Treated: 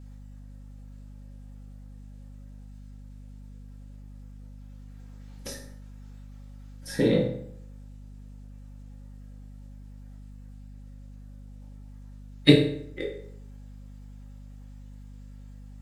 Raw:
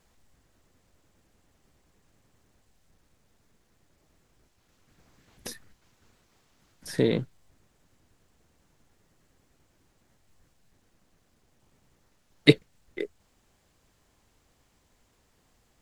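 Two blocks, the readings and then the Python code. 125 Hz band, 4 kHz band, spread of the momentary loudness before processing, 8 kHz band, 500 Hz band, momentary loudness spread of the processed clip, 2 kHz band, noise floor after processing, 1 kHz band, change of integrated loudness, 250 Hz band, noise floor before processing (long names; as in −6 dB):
+4.0 dB, +2.0 dB, 23 LU, +1.0 dB, +2.0 dB, 23 LU, −1.5 dB, −45 dBFS, +2.0 dB, +2.0 dB, +4.0 dB, −68 dBFS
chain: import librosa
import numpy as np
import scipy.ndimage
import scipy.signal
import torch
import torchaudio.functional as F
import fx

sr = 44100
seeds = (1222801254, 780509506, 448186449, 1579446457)

y = fx.spec_quant(x, sr, step_db=15)
y = fx.rev_fdn(y, sr, rt60_s=0.68, lf_ratio=1.05, hf_ratio=0.7, size_ms=11.0, drr_db=-3.5)
y = fx.add_hum(y, sr, base_hz=50, snr_db=11)
y = y * librosa.db_to_amplitude(-2.5)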